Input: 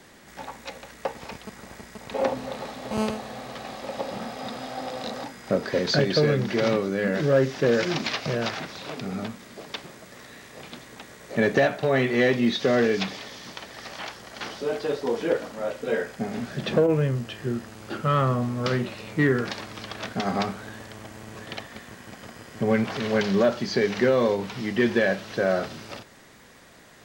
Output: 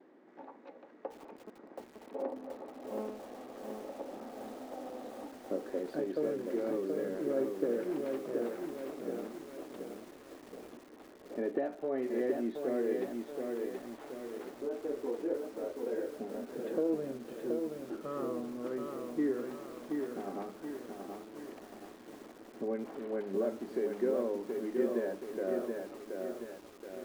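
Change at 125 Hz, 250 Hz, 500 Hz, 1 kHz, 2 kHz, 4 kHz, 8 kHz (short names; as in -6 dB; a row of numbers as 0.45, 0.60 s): -25.5 dB, -10.0 dB, -9.5 dB, -15.0 dB, -21.5 dB, -25.0 dB, under -15 dB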